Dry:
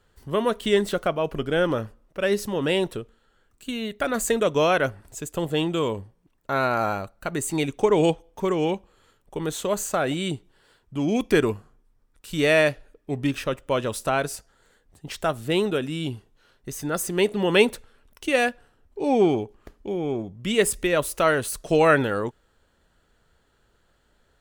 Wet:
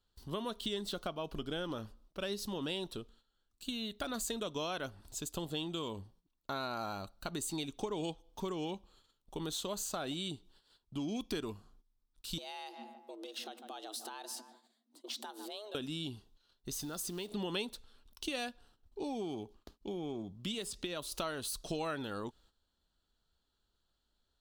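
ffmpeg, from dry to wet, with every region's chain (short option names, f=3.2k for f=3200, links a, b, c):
-filter_complex "[0:a]asettb=1/sr,asplit=3[a][b][c];[a]atrim=end=12.384[d];[b]atrim=start=12.38:end=15.75,asetpts=PTS-STARTPTS,afade=t=in:d=0.004:c=qsin,afade=t=out:st=3.366:d=0.004:c=qsin,asplit=2[e][f];[f]adelay=149,lowpass=f=1.5k:p=1,volume=-20.5dB,asplit=2[g][h];[h]adelay=149,lowpass=f=1.5k:p=1,volume=0.46,asplit=2[i][j];[j]adelay=149,lowpass=f=1.5k:p=1,volume=0.46[k];[e][g][i][k]amix=inputs=4:normalize=0,atrim=end_sample=148617,acompressor=threshold=-34dB:ratio=16:attack=3.2:release=140:knee=1:detection=peak,afreqshift=210[l];[c]atrim=start=15.746[m];[d][l]acrossfade=d=0.004:c1=hsin:c2=qsin[n];[n][m]acrossfade=d=0.004:c1=qsin:c2=hsin,asettb=1/sr,asplit=3[o][p][q];[o]atrim=end=16.794[r];[p]atrim=start=16.79:end=17.32,asetpts=PTS-STARTPTS,afade=t=in:d=0.004:c=qsin,afade=t=out:st=0.526:d=0.004:c=qsin,acompressor=threshold=-29dB:ratio=6:attack=3.2:release=140:knee=1:detection=peak,acrusher=bits=6:mode=log:mix=0:aa=0.000001[s];[q]atrim=start=17.316[t];[r][s]acrossfade=d=0.004:c1=hsin:c2=qsin[u];[u][t]acrossfade=d=0.004:c1=qsin:c2=hsin,asettb=1/sr,asplit=3[v][w][x];[v]atrim=end=19.024[y];[w]atrim=start=19.02:end=21.12,asetpts=PTS-STARTPTS,afade=t=in:d=0.004:c=qsin,afade=t=out:st=2.096:d=0.004:c=qsin,agate=range=-33dB:threshold=-53dB:ratio=3:release=100:detection=peak,acrossover=split=83|7700[z][aa][ab];[z]acompressor=threshold=-56dB:ratio=4[ac];[aa]acompressor=threshold=-25dB:ratio=4[ad];[ab]acompressor=threshold=-47dB:ratio=4[ae];[ac][ad][ae]amix=inputs=3:normalize=0[af];[x]atrim=start=21.116[ag];[y][af]acrossfade=d=0.004:c1=hsin:c2=qsin[ah];[ah][ag]acrossfade=d=0.004:c1=qsin:c2=hsin,equalizer=f=125:t=o:w=1:g=-7,equalizer=f=500:t=o:w=1:g=-8,equalizer=f=2k:t=o:w=1:g=-12,equalizer=f=4k:t=o:w=1:g=10,equalizer=f=8k:t=o:w=1:g=-3,agate=range=-11dB:threshold=-58dB:ratio=16:detection=peak,acompressor=threshold=-33dB:ratio=4,volume=-3dB"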